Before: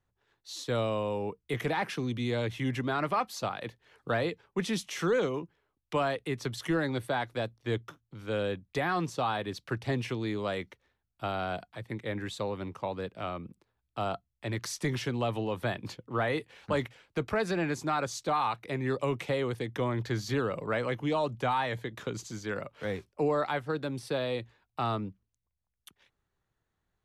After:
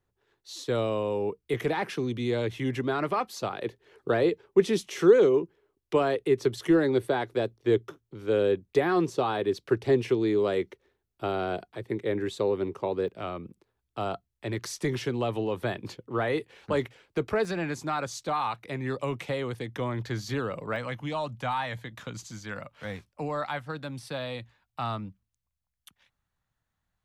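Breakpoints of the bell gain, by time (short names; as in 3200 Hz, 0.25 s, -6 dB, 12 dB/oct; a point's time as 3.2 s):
bell 390 Hz 0.64 oct
+7.5 dB
from 3.53 s +14.5 dB
from 13.08 s +6.5 dB
from 17.45 s -2 dB
from 20.76 s -11.5 dB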